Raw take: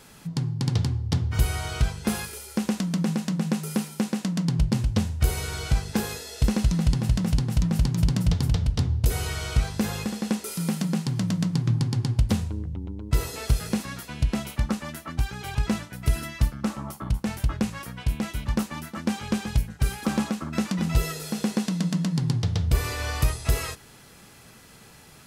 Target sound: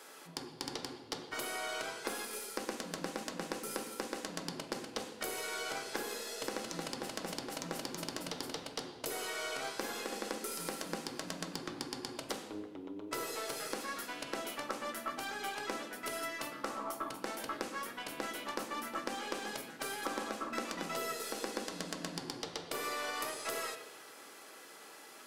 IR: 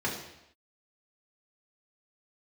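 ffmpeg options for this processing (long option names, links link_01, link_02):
-filter_complex "[0:a]highpass=frequency=330:width=0.5412,highpass=frequency=330:width=1.3066,acompressor=threshold=-35dB:ratio=6,aeval=exprs='0.0794*(cos(1*acos(clip(val(0)/0.0794,-1,1)))-cos(1*PI/2))+0.00562*(cos(3*acos(clip(val(0)/0.0794,-1,1)))-cos(3*PI/2))+0.00251*(cos(6*acos(clip(val(0)/0.0794,-1,1)))-cos(6*PI/2))+0.000501*(cos(7*acos(clip(val(0)/0.0794,-1,1)))-cos(7*PI/2))':channel_layout=same,asplit=2[link_01][link_02];[1:a]atrim=start_sample=2205,asetrate=30870,aresample=44100[link_03];[link_02][link_03]afir=irnorm=-1:irlink=0,volume=-11dB[link_04];[link_01][link_04]amix=inputs=2:normalize=0,volume=-2dB"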